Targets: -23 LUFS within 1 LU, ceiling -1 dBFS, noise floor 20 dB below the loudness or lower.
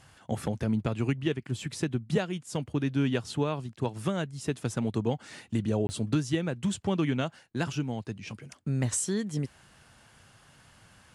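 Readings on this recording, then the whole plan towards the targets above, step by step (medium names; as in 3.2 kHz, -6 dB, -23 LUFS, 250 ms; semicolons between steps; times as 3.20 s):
dropouts 1; longest dropout 20 ms; loudness -31.0 LUFS; peak level -14.5 dBFS; loudness target -23.0 LUFS
-> interpolate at 5.87 s, 20 ms; trim +8 dB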